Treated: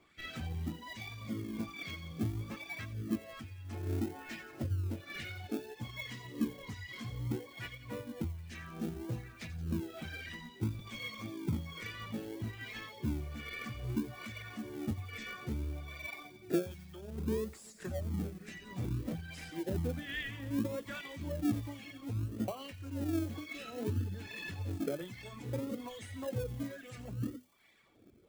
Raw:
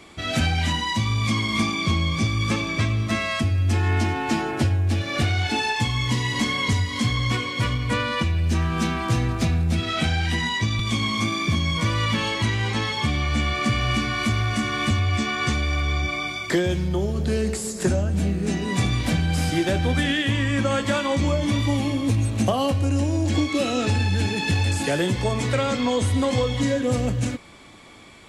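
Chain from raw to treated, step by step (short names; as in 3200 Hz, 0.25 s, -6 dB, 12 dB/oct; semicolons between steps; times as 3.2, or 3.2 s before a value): passive tone stack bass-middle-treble 10-0-1; notches 50/100/150/200/250 Hz; reverb removal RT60 0.82 s; wah 1.2 Hz 350–1900 Hz, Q 2.3; in parallel at -10 dB: decimation with a swept rate 37×, swing 60% 0.61 Hz; on the sum: high shelf 9700 Hz +11.5 dB; thin delay 87 ms, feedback 65%, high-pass 3800 Hz, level -11.5 dB; gain +16 dB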